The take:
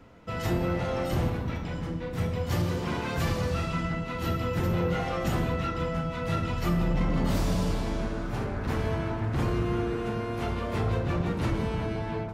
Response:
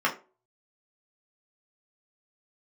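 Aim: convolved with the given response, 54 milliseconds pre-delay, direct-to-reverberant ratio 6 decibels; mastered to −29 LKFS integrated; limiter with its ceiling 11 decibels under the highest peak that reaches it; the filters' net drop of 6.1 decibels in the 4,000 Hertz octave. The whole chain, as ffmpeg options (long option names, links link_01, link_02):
-filter_complex "[0:a]equalizer=frequency=4000:width_type=o:gain=-8.5,alimiter=level_in=4dB:limit=-24dB:level=0:latency=1,volume=-4dB,asplit=2[link_01][link_02];[1:a]atrim=start_sample=2205,adelay=54[link_03];[link_02][link_03]afir=irnorm=-1:irlink=0,volume=-19.5dB[link_04];[link_01][link_04]amix=inputs=2:normalize=0,volume=7dB"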